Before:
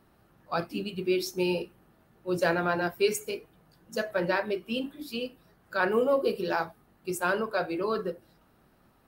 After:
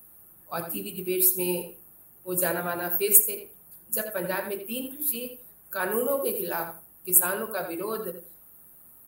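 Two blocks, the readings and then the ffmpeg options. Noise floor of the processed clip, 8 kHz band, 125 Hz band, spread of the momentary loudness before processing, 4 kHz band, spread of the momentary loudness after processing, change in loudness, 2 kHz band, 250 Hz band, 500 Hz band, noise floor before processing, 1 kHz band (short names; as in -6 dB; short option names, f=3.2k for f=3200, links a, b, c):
-54 dBFS, +17.0 dB, -2.5 dB, 12 LU, -3.0 dB, 17 LU, +4.5 dB, -2.5 dB, -2.0 dB, -2.0 dB, -64 dBFS, -2.5 dB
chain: -filter_complex "[0:a]aexciter=amount=11:drive=9.8:freq=8.4k,asplit=2[a][b];[b]adelay=84,lowpass=f=3.4k:p=1,volume=-8dB,asplit=2[c][d];[d]adelay=84,lowpass=f=3.4k:p=1,volume=0.16,asplit=2[e][f];[f]adelay=84,lowpass=f=3.4k:p=1,volume=0.16[g];[c][e][g]amix=inputs=3:normalize=0[h];[a][h]amix=inputs=2:normalize=0,volume=-3dB"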